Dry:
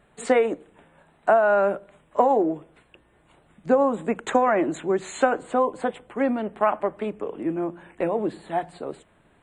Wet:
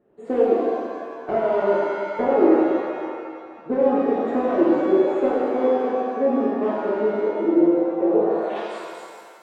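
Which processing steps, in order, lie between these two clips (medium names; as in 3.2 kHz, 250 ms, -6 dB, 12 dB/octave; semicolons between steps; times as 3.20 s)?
one-sided wavefolder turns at -17.5 dBFS; band-pass sweep 350 Hz -> 6.3 kHz, 8.14–8.68 s; pitch-shifted reverb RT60 1.9 s, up +7 st, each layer -8 dB, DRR -7 dB; trim +2 dB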